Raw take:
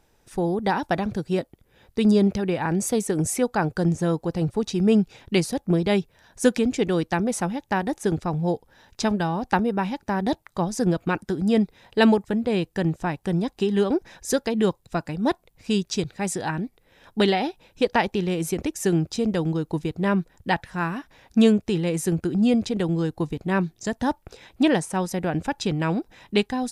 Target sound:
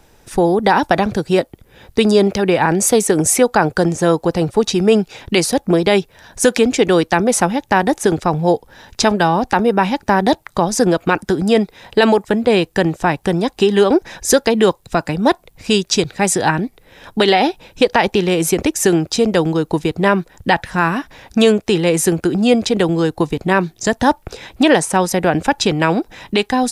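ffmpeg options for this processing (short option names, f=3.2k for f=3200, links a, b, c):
-filter_complex "[0:a]acrossover=split=340|1200[a][b][c];[a]acompressor=threshold=-33dB:ratio=6[d];[d][b][c]amix=inputs=3:normalize=0,alimiter=level_in=14dB:limit=-1dB:release=50:level=0:latency=1,volume=-1dB"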